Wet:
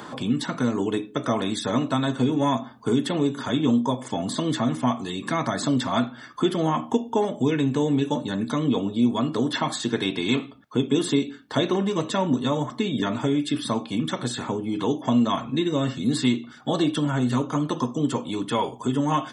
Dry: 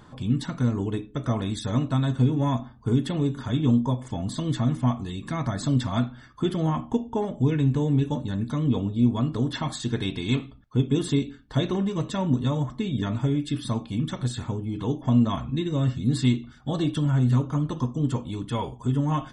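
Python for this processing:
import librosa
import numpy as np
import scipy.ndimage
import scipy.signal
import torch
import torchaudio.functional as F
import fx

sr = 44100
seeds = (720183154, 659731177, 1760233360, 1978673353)

y = scipy.signal.sosfilt(scipy.signal.butter(2, 270.0, 'highpass', fs=sr, output='sos'), x)
y = fx.band_squash(y, sr, depth_pct=40)
y = y * 10.0 ** (6.0 / 20.0)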